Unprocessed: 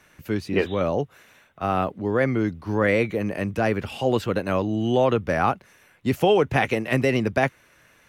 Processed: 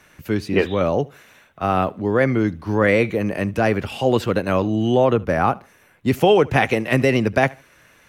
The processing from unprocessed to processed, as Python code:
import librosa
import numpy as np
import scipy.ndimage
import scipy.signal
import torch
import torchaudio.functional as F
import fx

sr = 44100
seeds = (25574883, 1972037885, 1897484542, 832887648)

y = fx.peak_eq(x, sr, hz=4300.0, db=-5.0, octaves=2.8, at=(4.94, 6.08))
y = fx.echo_feedback(y, sr, ms=74, feedback_pct=27, wet_db=-23.5)
y = y * 10.0 ** (4.0 / 20.0)